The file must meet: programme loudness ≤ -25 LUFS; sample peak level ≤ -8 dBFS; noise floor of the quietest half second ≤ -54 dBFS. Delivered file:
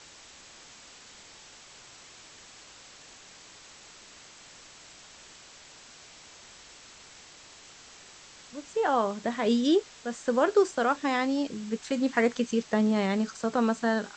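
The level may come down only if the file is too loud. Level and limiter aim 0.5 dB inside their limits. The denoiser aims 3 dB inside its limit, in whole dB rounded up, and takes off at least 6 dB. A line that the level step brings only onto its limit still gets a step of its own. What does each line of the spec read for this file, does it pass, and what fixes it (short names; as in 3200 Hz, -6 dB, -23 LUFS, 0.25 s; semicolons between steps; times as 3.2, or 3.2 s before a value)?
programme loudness -27.0 LUFS: OK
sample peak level -10.5 dBFS: OK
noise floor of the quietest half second -51 dBFS: fail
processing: denoiser 6 dB, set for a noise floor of -51 dBFS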